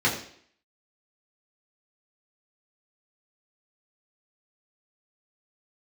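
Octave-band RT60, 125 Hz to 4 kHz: 0.50 s, 0.60 s, 0.60 s, 0.55 s, 0.60 s, 0.60 s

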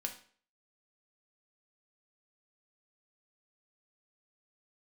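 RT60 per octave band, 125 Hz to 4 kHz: 0.40 s, 0.45 s, 0.50 s, 0.45 s, 0.45 s, 0.45 s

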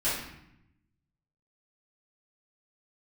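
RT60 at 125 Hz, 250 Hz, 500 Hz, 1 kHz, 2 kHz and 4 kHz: 1.4 s, 1.2 s, 0.80 s, 0.80 s, 0.80 s, 0.60 s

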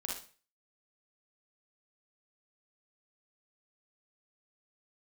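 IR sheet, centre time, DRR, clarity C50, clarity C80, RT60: 43 ms, -2.5 dB, 1.5 dB, 9.5 dB, 0.40 s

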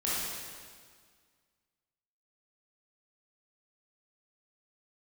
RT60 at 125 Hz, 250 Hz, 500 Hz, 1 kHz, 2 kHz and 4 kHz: 1.9 s, 1.9 s, 1.8 s, 1.8 s, 1.7 s, 1.7 s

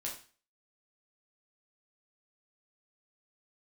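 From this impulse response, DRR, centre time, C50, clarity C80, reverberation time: -3.0 dB, 27 ms, 7.0 dB, 12.0 dB, 0.40 s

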